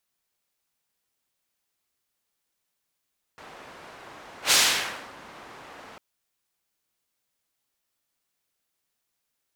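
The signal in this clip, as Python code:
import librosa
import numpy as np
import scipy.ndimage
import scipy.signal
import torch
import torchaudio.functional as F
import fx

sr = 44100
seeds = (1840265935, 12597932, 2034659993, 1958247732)

y = fx.whoosh(sr, seeds[0], length_s=2.6, peak_s=1.14, rise_s=0.11, fall_s=0.65, ends_hz=1000.0, peak_hz=4800.0, q=0.7, swell_db=27.5)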